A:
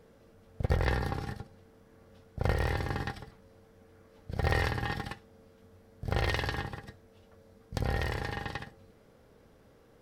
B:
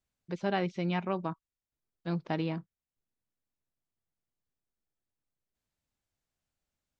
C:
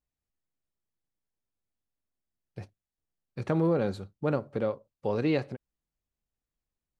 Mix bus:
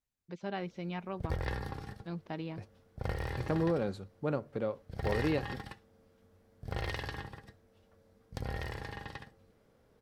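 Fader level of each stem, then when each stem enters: -7.0, -7.5, -5.0 dB; 0.60, 0.00, 0.00 s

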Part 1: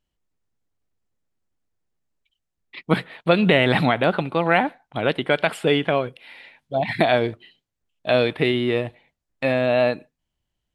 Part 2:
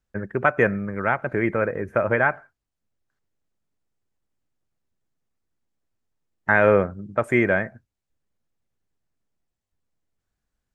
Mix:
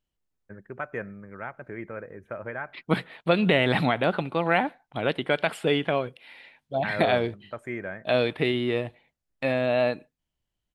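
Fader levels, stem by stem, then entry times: -4.5, -14.5 dB; 0.00, 0.35 s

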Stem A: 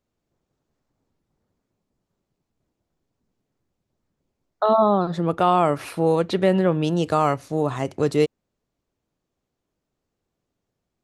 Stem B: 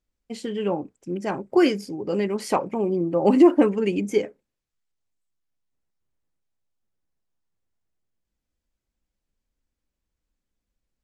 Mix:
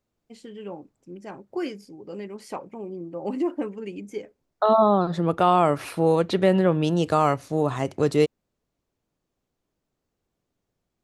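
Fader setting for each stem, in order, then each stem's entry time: -0.5, -11.5 dB; 0.00, 0.00 s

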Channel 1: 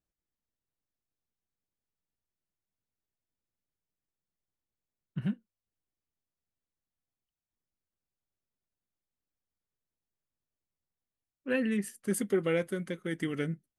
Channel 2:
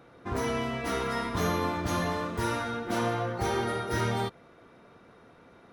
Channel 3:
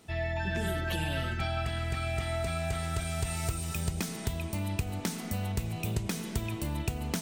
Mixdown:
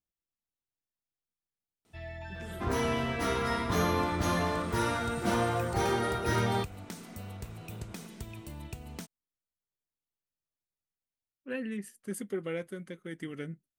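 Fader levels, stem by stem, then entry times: -6.5, 0.0, -10.0 dB; 0.00, 2.35, 1.85 s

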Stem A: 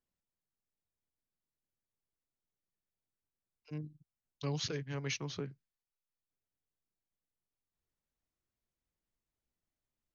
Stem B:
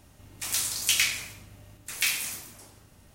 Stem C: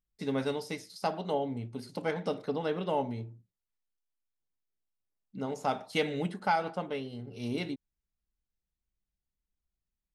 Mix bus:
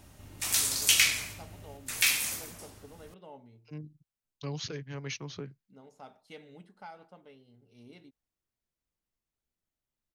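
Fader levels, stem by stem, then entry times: -0.5, +1.0, -19.0 dB; 0.00, 0.00, 0.35 s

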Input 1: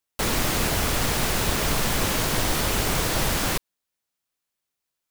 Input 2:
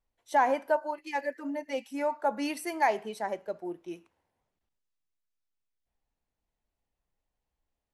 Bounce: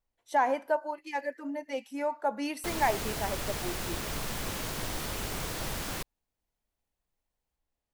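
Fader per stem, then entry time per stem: -11.5, -1.5 dB; 2.45, 0.00 s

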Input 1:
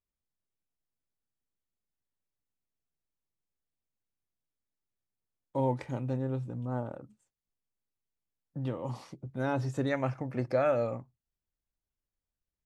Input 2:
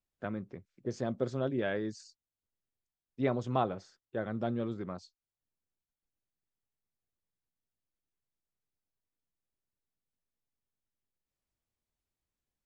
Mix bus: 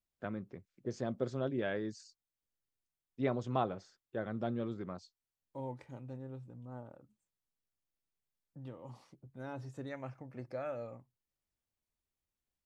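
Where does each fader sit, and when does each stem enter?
-13.0, -3.0 dB; 0.00, 0.00 s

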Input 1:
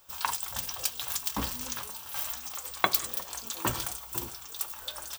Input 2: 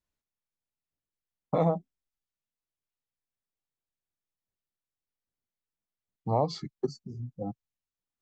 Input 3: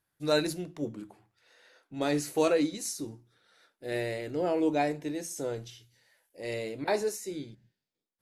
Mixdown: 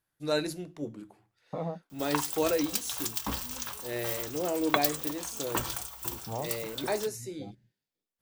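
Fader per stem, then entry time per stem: -1.5, -9.5, -2.5 dB; 1.90, 0.00, 0.00 s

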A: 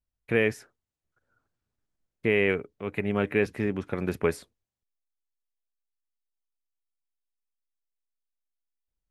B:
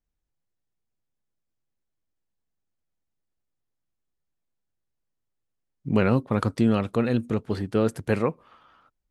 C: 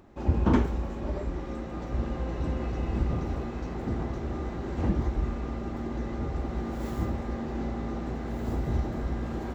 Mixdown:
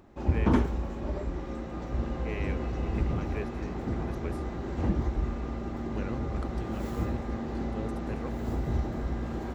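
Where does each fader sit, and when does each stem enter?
-15.0, -17.0, -1.0 dB; 0.00, 0.00, 0.00 s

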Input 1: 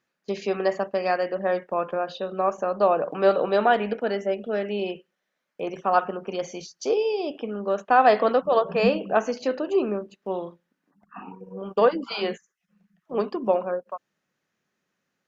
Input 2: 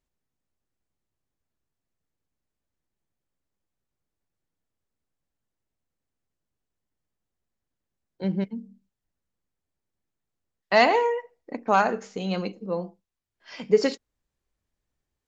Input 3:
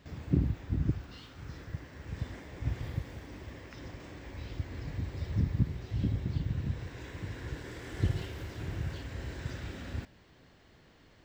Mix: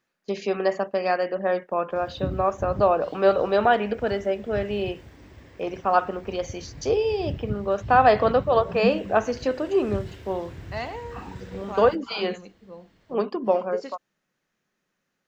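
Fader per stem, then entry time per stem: +0.5, -14.5, -2.5 dB; 0.00, 0.00, 1.90 s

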